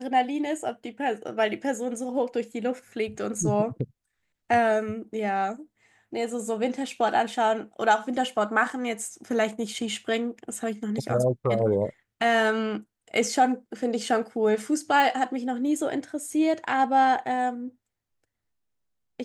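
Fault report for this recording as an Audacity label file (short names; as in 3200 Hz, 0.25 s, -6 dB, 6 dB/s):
15.000000	15.000000	pop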